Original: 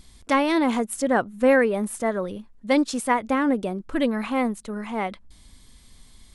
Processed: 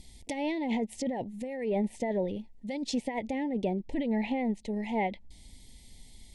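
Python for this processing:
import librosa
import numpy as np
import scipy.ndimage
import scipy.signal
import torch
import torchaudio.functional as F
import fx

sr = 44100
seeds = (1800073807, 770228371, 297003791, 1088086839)

y = fx.over_compress(x, sr, threshold_db=-25.0, ratio=-1.0)
y = scipy.signal.sosfilt(scipy.signal.ellip(3, 1.0, 40, [900.0, 1900.0], 'bandstop', fs=sr, output='sos'), y)
y = fx.env_lowpass_down(y, sr, base_hz=2900.0, full_db=-21.5)
y = F.gain(torch.from_numpy(y), -4.5).numpy()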